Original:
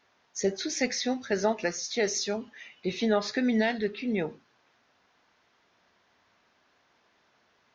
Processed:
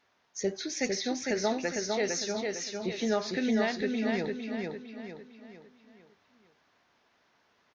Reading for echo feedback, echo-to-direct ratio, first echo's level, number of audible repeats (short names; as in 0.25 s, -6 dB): 42%, -2.5 dB, -3.5 dB, 5